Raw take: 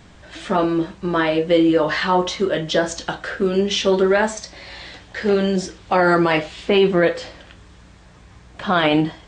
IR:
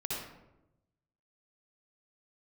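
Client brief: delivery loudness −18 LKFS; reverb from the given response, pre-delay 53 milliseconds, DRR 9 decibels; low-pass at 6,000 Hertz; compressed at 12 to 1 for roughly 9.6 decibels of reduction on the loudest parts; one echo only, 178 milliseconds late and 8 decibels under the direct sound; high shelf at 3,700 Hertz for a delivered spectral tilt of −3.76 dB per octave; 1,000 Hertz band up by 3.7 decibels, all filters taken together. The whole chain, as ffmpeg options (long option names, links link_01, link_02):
-filter_complex "[0:a]lowpass=6000,equalizer=frequency=1000:width_type=o:gain=5.5,highshelf=frequency=3700:gain=-7,acompressor=threshold=-20dB:ratio=12,aecho=1:1:178:0.398,asplit=2[link_01][link_02];[1:a]atrim=start_sample=2205,adelay=53[link_03];[link_02][link_03]afir=irnorm=-1:irlink=0,volume=-12.5dB[link_04];[link_01][link_04]amix=inputs=2:normalize=0,volume=6.5dB"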